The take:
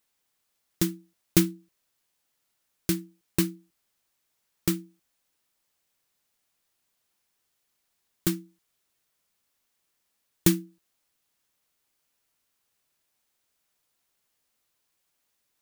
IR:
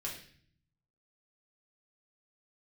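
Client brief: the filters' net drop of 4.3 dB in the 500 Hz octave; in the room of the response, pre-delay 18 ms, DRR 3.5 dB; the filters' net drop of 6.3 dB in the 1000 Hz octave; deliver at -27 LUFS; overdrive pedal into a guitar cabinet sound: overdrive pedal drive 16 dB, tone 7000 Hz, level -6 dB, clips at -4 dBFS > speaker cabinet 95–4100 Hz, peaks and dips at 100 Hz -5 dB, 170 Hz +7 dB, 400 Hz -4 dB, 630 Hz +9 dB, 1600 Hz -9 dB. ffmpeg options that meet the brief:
-filter_complex "[0:a]equalizer=f=500:t=o:g=-6.5,equalizer=f=1k:t=o:g=-6,asplit=2[a][b];[1:a]atrim=start_sample=2205,adelay=18[c];[b][c]afir=irnorm=-1:irlink=0,volume=-4dB[d];[a][d]amix=inputs=2:normalize=0,asplit=2[e][f];[f]highpass=f=720:p=1,volume=16dB,asoftclip=type=tanh:threshold=-4dB[g];[e][g]amix=inputs=2:normalize=0,lowpass=f=7k:p=1,volume=-6dB,highpass=95,equalizer=f=100:t=q:w=4:g=-5,equalizer=f=170:t=q:w=4:g=7,equalizer=f=400:t=q:w=4:g=-4,equalizer=f=630:t=q:w=4:g=9,equalizer=f=1.6k:t=q:w=4:g=-9,lowpass=f=4.1k:w=0.5412,lowpass=f=4.1k:w=1.3066,volume=0.5dB"

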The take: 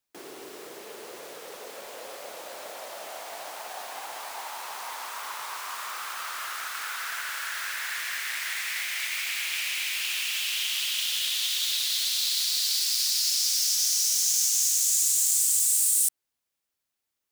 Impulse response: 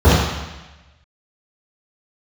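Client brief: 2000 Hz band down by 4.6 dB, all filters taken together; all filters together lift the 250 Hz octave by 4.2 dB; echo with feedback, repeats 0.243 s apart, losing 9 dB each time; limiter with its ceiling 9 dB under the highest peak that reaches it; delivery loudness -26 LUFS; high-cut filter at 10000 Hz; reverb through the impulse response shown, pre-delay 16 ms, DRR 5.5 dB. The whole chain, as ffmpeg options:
-filter_complex "[0:a]lowpass=10k,equalizer=f=250:t=o:g=6.5,equalizer=f=2k:t=o:g=-6,alimiter=limit=-21.5dB:level=0:latency=1,aecho=1:1:243|486|729|972:0.355|0.124|0.0435|0.0152,asplit=2[a][b];[1:a]atrim=start_sample=2205,adelay=16[c];[b][c]afir=irnorm=-1:irlink=0,volume=-33.5dB[d];[a][d]amix=inputs=2:normalize=0,volume=4.5dB"

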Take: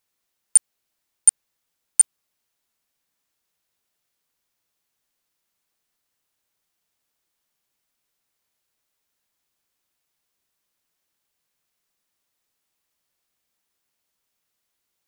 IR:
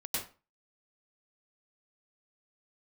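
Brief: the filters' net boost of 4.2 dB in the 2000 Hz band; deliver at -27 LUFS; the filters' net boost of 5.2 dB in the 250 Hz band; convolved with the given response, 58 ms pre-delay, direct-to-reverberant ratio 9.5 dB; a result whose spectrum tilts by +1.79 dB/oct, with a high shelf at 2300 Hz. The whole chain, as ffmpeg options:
-filter_complex "[0:a]equalizer=f=250:t=o:g=6.5,equalizer=f=2k:t=o:g=3.5,highshelf=f=2.3k:g=3,asplit=2[a][b];[1:a]atrim=start_sample=2205,adelay=58[c];[b][c]afir=irnorm=-1:irlink=0,volume=-13dB[d];[a][d]amix=inputs=2:normalize=0,volume=-11.5dB"

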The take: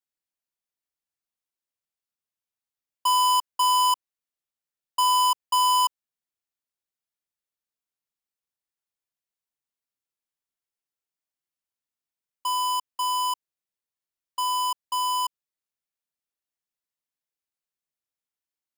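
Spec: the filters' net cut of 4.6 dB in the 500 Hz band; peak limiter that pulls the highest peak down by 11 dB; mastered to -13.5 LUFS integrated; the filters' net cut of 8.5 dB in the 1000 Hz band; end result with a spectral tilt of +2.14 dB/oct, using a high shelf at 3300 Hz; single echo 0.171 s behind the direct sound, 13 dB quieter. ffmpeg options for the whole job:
-af "equalizer=f=500:t=o:g=-3,equalizer=f=1k:t=o:g=-7.5,highshelf=f=3.3k:g=-5.5,alimiter=level_in=10dB:limit=-24dB:level=0:latency=1,volume=-10dB,aecho=1:1:171:0.224,volume=24dB"

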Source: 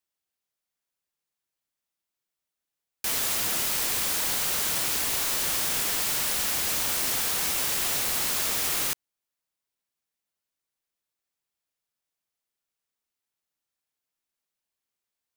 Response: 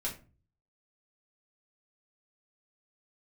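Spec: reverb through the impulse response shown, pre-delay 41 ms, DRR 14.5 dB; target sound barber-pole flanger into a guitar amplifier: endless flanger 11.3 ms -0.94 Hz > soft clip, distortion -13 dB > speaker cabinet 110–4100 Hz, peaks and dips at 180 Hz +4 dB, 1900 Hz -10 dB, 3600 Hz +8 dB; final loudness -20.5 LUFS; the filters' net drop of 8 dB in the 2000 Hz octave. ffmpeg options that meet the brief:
-filter_complex "[0:a]equalizer=f=2k:t=o:g=-7,asplit=2[a][b];[1:a]atrim=start_sample=2205,adelay=41[c];[b][c]afir=irnorm=-1:irlink=0,volume=-16.5dB[d];[a][d]amix=inputs=2:normalize=0,asplit=2[e][f];[f]adelay=11.3,afreqshift=-0.94[g];[e][g]amix=inputs=2:normalize=1,asoftclip=threshold=-28.5dB,highpass=110,equalizer=f=180:t=q:w=4:g=4,equalizer=f=1.9k:t=q:w=4:g=-10,equalizer=f=3.6k:t=q:w=4:g=8,lowpass=f=4.1k:w=0.5412,lowpass=f=4.1k:w=1.3066,volume=18dB"

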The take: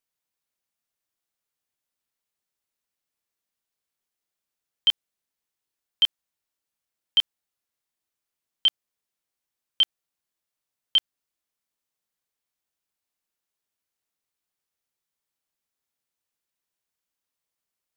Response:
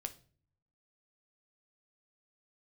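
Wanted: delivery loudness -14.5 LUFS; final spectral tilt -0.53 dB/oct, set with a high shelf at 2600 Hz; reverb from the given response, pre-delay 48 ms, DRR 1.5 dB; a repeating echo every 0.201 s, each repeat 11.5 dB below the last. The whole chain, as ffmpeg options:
-filter_complex "[0:a]highshelf=f=2.6k:g=8,aecho=1:1:201|402|603:0.266|0.0718|0.0194,asplit=2[a][b];[1:a]atrim=start_sample=2205,adelay=48[c];[b][c]afir=irnorm=-1:irlink=0,volume=0.5dB[d];[a][d]amix=inputs=2:normalize=0,volume=4.5dB"

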